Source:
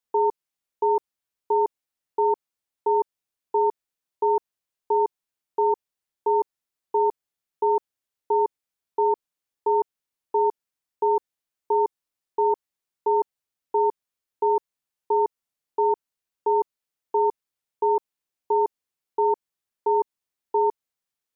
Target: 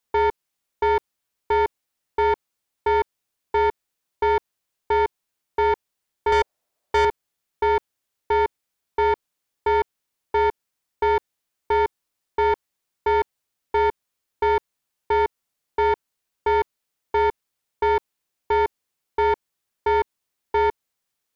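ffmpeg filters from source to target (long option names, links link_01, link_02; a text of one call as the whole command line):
ffmpeg -i in.wav -filter_complex "[0:a]asettb=1/sr,asplit=3[link_01][link_02][link_03];[link_01]atrim=end=6.324[link_04];[link_02]atrim=start=6.32:end=7.05,asetpts=PTS-STARTPTS,afade=type=in:duration=0.004:curve=qsin,afade=type=out:start_time=0.726:duration=0.004:curve=qsin,equalizer=frequency=620:width=1.4:gain=13[link_05];[link_03]atrim=start=7.046[link_06];[link_04][link_05]acrossfade=duration=0.004:curve1=hsin:curve2=qsin[link_07];[link_07][link_06]acrossfade=duration=0.004:curve1=qsin:curve2=hsin,asoftclip=type=tanh:threshold=-22.5dB,volume=7dB" out.wav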